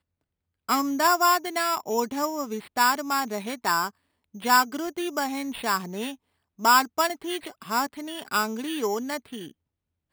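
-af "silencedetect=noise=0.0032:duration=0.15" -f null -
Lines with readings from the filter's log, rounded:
silence_start: 0.00
silence_end: 0.69 | silence_duration: 0.69
silence_start: 3.90
silence_end: 4.34 | silence_duration: 0.44
silence_start: 6.16
silence_end: 6.59 | silence_duration: 0.43
silence_start: 9.51
silence_end: 10.12 | silence_duration: 0.61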